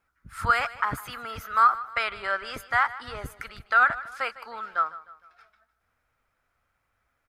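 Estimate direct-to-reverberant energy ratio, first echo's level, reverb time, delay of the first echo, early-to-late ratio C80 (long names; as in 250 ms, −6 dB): no reverb audible, −17.0 dB, no reverb audible, 153 ms, no reverb audible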